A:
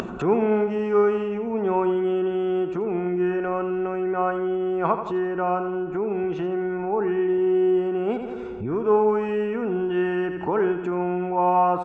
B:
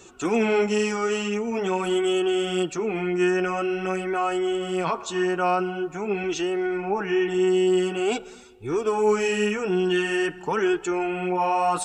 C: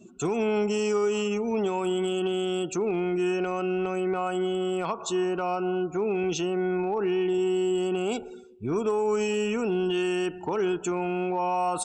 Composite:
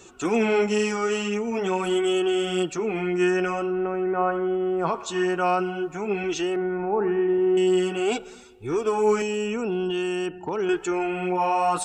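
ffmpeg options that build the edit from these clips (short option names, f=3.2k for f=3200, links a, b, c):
-filter_complex "[0:a]asplit=2[a][b];[1:a]asplit=4[c][d][e][f];[c]atrim=end=3.76[g];[a]atrim=start=3.52:end=5[h];[d]atrim=start=4.76:end=6.562[i];[b]atrim=start=6.558:end=7.572[j];[e]atrim=start=7.568:end=9.222[k];[2:a]atrim=start=9.218:end=10.692[l];[f]atrim=start=10.688[m];[g][h]acrossfade=d=0.24:c1=tri:c2=tri[n];[n][i]acrossfade=d=0.24:c1=tri:c2=tri[o];[o][j]acrossfade=d=0.004:c1=hsin:c2=hsin[p];[p][k]acrossfade=d=0.004:c1=hsin:c2=hsin[q];[q][l]acrossfade=d=0.004:c1=hsin:c2=hsin[r];[r][m]acrossfade=d=0.004:c1=hsin:c2=hsin"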